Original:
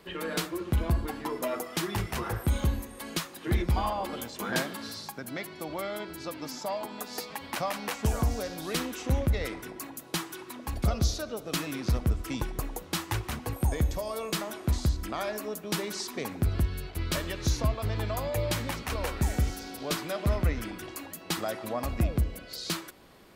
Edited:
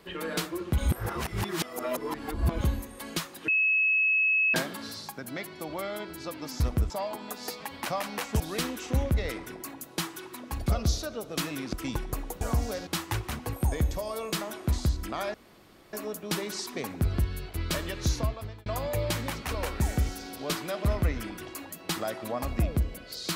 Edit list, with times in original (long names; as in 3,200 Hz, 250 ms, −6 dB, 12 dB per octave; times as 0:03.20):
0:00.78–0:02.61: reverse
0:03.48–0:04.54: beep over 2,580 Hz −21 dBFS
0:08.10–0:08.56: move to 0:12.87
0:11.89–0:12.19: move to 0:06.60
0:15.34: splice in room tone 0.59 s
0:17.56–0:18.07: fade out